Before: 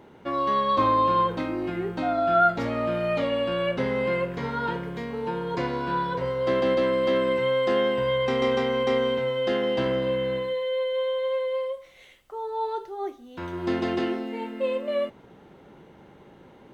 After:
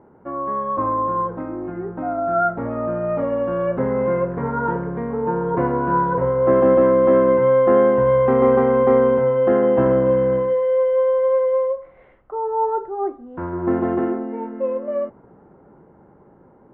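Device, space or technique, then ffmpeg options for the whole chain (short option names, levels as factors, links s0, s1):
action camera in a waterproof case: -af "lowpass=f=1400:w=0.5412,lowpass=f=1400:w=1.3066,dynaudnorm=f=570:g=13:m=3.16" -ar 48000 -c:a aac -b:a 64k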